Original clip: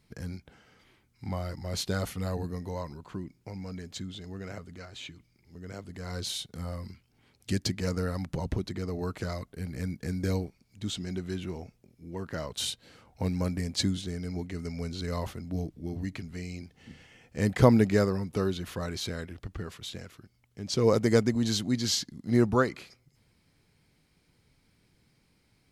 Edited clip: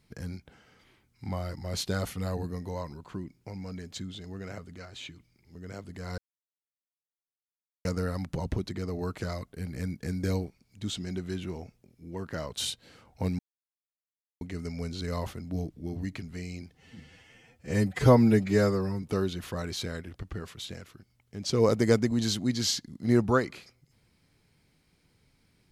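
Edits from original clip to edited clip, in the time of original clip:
6.18–7.85 s: mute
13.39–14.41 s: mute
16.75–18.27 s: stretch 1.5×

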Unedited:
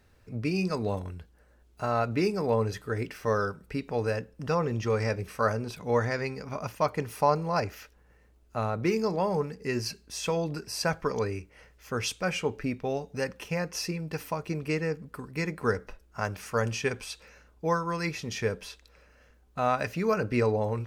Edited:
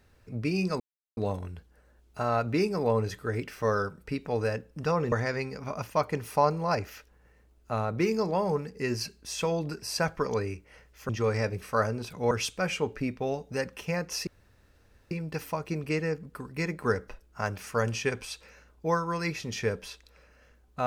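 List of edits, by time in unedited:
0.80 s: insert silence 0.37 s
4.75–5.97 s: move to 11.94 s
13.90 s: insert room tone 0.84 s

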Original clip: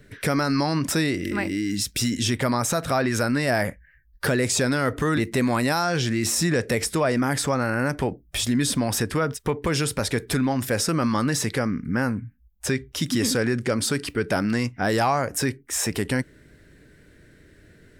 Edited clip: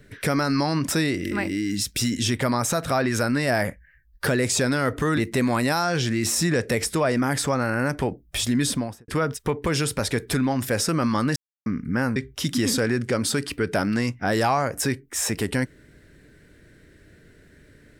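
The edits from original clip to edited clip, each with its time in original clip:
8.66–9.08 s: studio fade out
11.36–11.66 s: mute
12.16–12.73 s: delete

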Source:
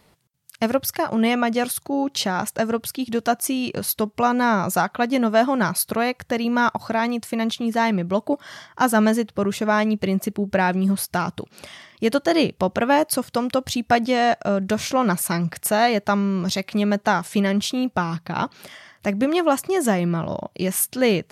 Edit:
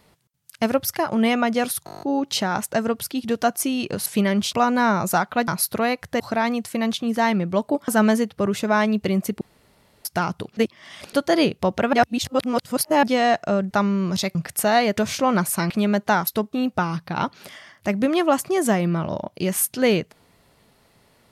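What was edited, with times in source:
1.86 s: stutter 0.02 s, 9 plays
3.90–4.16 s: swap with 17.25–17.72 s
5.11–5.65 s: delete
6.37–6.78 s: delete
8.46–8.86 s: delete
10.39–11.03 s: room tone
11.55–12.11 s: reverse
12.91–14.01 s: reverse
14.69–15.42 s: swap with 16.04–16.68 s

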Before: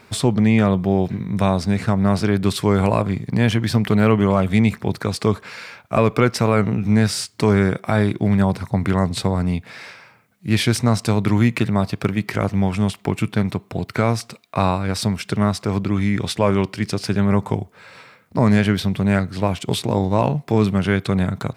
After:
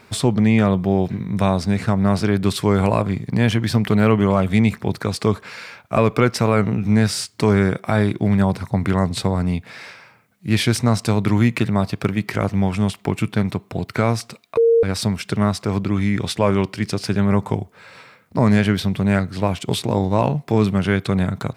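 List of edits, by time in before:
14.57–14.83 s: bleep 461 Hz -10.5 dBFS

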